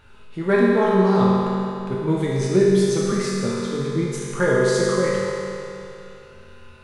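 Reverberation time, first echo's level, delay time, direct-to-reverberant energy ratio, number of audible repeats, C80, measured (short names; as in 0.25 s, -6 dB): 2.7 s, none, none, -6.0 dB, none, -0.5 dB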